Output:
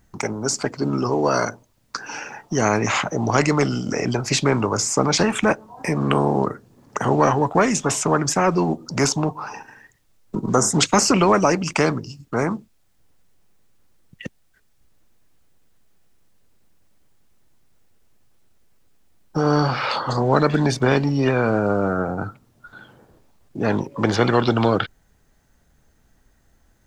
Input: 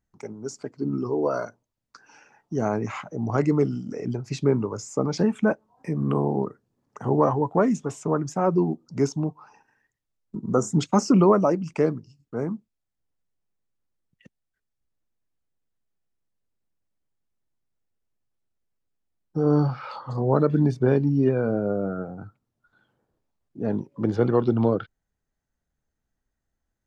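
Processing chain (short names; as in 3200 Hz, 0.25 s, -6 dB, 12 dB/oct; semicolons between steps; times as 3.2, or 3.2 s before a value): spectral compressor 2:1; gain +4 dB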